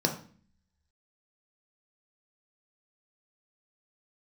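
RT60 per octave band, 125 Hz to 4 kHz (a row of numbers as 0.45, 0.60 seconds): 0.75, 0.80, 0.45, 0.40, 0.45, 0.40 seconds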